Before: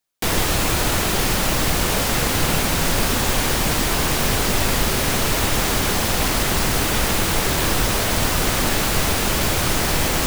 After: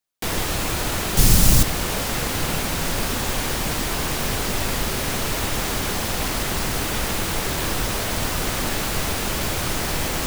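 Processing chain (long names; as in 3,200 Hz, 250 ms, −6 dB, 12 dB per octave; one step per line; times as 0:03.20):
0:01.17–0:01.63: bass and treble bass +14 dB, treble +11 dB
level −4.5 dB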